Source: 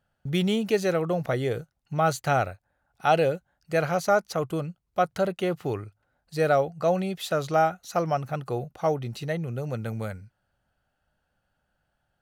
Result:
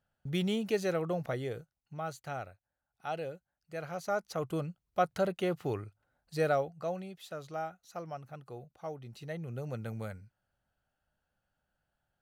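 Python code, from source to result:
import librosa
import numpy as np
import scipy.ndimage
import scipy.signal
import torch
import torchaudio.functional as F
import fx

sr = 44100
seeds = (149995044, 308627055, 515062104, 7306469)

y = fx.gain(x, sr, db=fx.line((1.16, -7.0), (2.12, -16.0), (3.76, -16.0), (4.57, -5.0), (6.37, -5.0), (7.15, -16.0), (8.94, -16.0), (9.57, -7.5)))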